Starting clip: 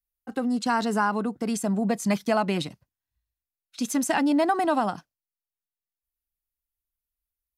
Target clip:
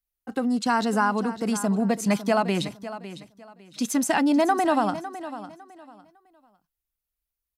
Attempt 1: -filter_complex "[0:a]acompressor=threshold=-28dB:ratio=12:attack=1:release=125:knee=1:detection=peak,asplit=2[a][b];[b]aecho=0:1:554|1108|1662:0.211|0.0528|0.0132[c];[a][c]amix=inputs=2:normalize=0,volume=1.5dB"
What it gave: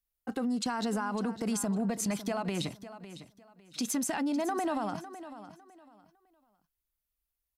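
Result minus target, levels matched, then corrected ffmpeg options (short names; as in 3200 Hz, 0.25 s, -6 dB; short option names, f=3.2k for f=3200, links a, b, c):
compressor: peak gain reduction +14 dB
-filter_complex "[0:a]asplit=2[a][b];[b]aecho=0:1:554|1108|1662:0.211|0.0528|0.0132[c];[a][c]amix=inputs=2:normalize=0,volume=1.5dB"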